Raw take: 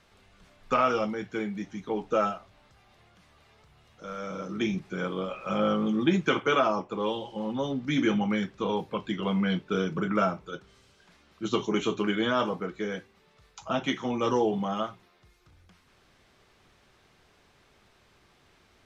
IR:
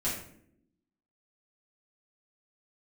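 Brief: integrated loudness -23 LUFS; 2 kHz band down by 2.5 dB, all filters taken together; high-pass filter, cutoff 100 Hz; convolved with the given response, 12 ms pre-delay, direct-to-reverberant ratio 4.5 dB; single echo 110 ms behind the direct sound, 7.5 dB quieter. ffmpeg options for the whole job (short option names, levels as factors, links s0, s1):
-filter_complex "[0:a]highpass=100,equalizer=f=2000:t=o:g=-3.5,aecho=1:1:110:0.422,asplit=2[s0][s1];[1:a]atrim=start_sample=2205,adelay=12[s2];[s1][s2]afir=irnorm=-1:irlink=0,volume=0.299[s3];[s0][s3]amix=inputs=2:normalize=0,volume=1.5"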